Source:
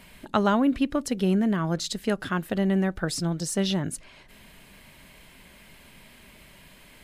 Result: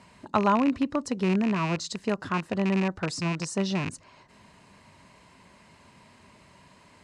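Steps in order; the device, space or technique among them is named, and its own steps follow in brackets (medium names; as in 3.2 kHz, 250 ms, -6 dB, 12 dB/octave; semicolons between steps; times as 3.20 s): car door speaker with a rattle (rattle on loud lows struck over -29 dBFS, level -17 dBFS; cabinet simulation 85–7900 Hz, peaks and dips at 94 Hz +7 dB, 1 kHz +8 dB, 1.6 kHz -3 dB, 2.3 kHz -5 dB, 3.3 kHz -9 dB); trim -2 dB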